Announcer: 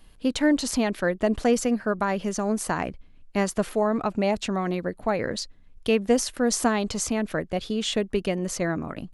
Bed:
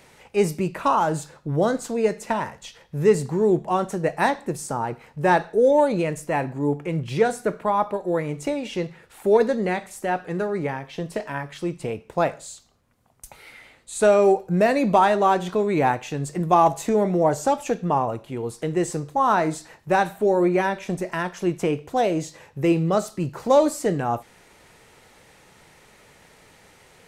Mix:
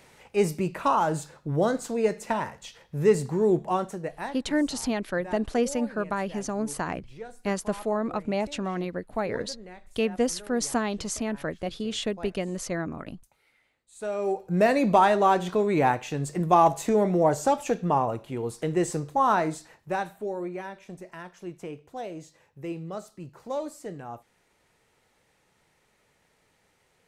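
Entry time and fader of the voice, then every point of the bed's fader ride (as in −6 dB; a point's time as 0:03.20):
4.10 s, −4.0 dB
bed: 0:03.71 −3 dB
0:04.58 −21 dB
0:13.85 −21 dB
0:14.63 −2 dB
0:19.22 −2 dB
0:20.55 −15 dB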